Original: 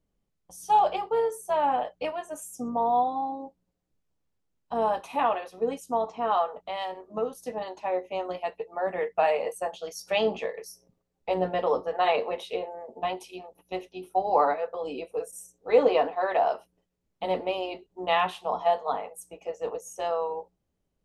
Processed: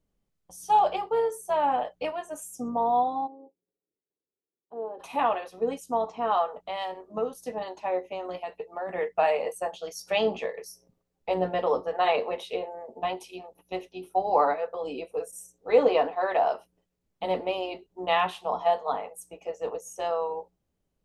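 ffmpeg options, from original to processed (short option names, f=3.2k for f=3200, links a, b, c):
-filter_complex "[0:a]asplit=3[a][b][c];[a]afade=t=out:st=3.26:d=0.02[d];[b]bandpass=f=400:t=q:w=4.2,afade=t=in:st=3.26:d=0.02,afade=t=out:st=4.99:d=0.02[e];[c]afade=t=in:st=4.99:d=0.02[f];[d][e][f]amix=inputs=3:normalize=0,asettb=1/sr,asplit=3[g][h][i];[g]atrim=end=8.124[j];[h]atrim=start=8.12:end=8.89,asetpts=PTS-STARTPTS,afade=t=in:d=0.004:c=qsin,afade=t=out:st=0.766:d=0.004:c=qsin,acompressor=threshold=-29dB:ratio=6:attack=3.2:release=140:knee=1:detection=peak[k];[i]atrim=start=8.886[l];[j][k]acrossfade=d=0.004:c1=hsin:c2=qsin[m];[m][l]acrossfade=d=0.004:c1=qsin:c2=hsin"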